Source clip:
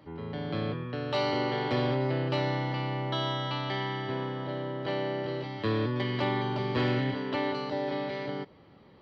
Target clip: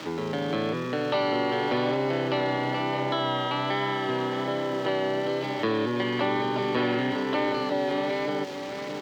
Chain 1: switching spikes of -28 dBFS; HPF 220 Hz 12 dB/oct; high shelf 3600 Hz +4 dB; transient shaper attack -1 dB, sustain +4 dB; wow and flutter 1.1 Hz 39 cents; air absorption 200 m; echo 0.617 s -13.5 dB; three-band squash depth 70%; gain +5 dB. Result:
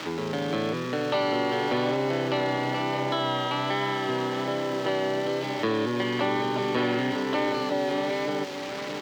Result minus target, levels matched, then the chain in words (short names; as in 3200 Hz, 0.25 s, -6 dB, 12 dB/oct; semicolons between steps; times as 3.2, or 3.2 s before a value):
switching spikes: distortion +6 dB
switching spikes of -34.5 dBFS; HPF 220 Hz 12 dB/oct; high shelf 3600 Hz +4 dB; transient shaper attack -1 dB, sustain +4 dB; wow and flutter 1.1 Hz 39 cents; air absorption 200 m; echo 0.617 s -13.5 dB; three-band squash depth 70%; gain +5 dB